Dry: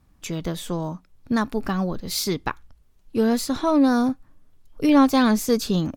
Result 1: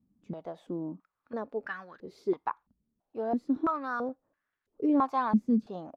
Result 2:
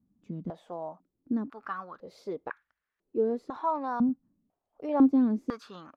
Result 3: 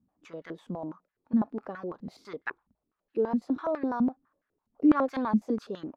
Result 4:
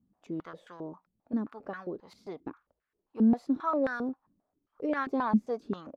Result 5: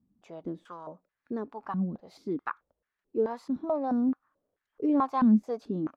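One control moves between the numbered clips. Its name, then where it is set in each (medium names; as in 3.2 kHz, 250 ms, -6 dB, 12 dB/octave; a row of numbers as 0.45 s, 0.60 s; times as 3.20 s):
step-sequenced band-pass, rate: 3 Hz, 2 Hz, 12 Hz, 7.5 Hz, 4.6 Hz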